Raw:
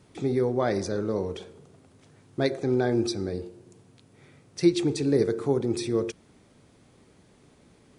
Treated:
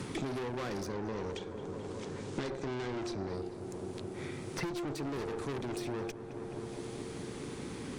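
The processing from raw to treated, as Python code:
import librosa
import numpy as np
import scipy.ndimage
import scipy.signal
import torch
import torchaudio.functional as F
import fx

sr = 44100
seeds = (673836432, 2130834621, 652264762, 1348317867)

y = fx.peak_eq(x, sr, hz=640.0, db=-11.5, octaves=0.28)
y = fx.tube_stage(y, sr, drive_db=35.0, bias=0.75)
y = fx.lowpass(y, sr, hz=8400.0, slope=24, at=(0.94, 3.34))
y = fx.echo_filtered(y, sr, ms=215, feedback_pct=74, hz=2100.0, wet_db=-15)
y = fx.band_squash(y, sr, depth_pct=100)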